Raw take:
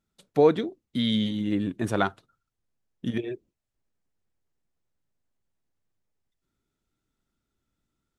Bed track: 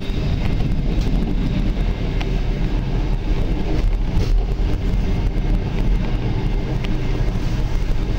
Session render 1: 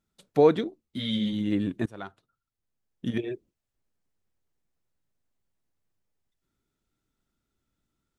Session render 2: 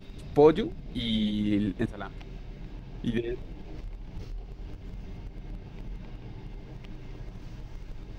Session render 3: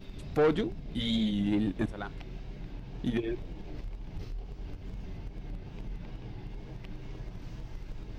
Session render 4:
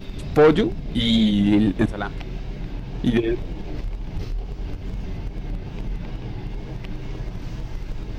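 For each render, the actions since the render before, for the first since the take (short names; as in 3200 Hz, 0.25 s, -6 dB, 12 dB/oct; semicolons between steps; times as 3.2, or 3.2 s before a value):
0.64–1.33 ensemble effect; 1.86–3.18 fade in, from -23.5 dB
add bed track -21.5 dB
soft clip -20 dBFS, distortion -9 dB; wow and flutter 65 cents
gain +11 dB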